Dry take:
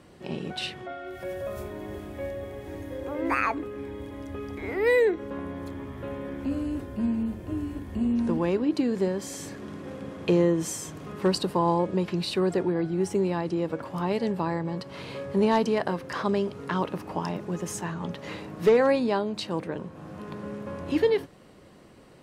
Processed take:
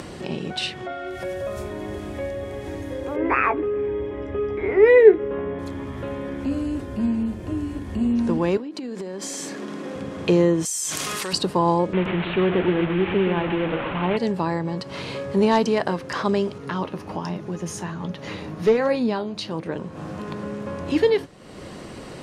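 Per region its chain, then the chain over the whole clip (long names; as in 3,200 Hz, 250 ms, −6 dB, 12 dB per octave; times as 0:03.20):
0:03.16–0:05.59: Savitzky-Golay smoothing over 25 samples + parametric band 410 Hz +13 dB 0.21 octaves + double-tracking delay 16 ms −7.5 dB
0:08.57–0:09.96: high-pass filter 190 Hz 24 dB per octave + downward compressor 12 to 1, threshold −34 dBFS
0:10.65–0:11.33: first-order pre-emphasis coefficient 0.97 + envelope flattener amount 100%
0:11.93–0:14.17: linear delta modulator 16 kbit/s, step −26.5 dBFS + single-tap delay 125 ms −9 dB
0:16.58–0:19.66: bass and treble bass +3 dB, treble 0 dB + notch filter 7,800 Hz, Q 5.8 + flanger 1.3 Hz, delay 5 ms, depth 8.4 ms, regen +65%
whole clip: low-pass filter 8,200 Hz 12 dB per octave; high-shelf EQ 5,300 Hz +6.5 dB; upward compression, threshold −30 dBFS; level +4 dB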